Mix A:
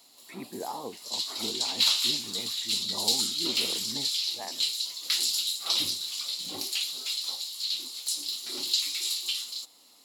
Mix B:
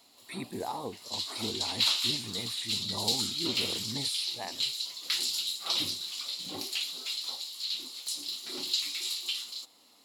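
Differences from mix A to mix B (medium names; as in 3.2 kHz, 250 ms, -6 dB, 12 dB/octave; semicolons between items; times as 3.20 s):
speech: remove band-pass 190–2100 Hz; background: add tone controls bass +2 dB, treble -6 dB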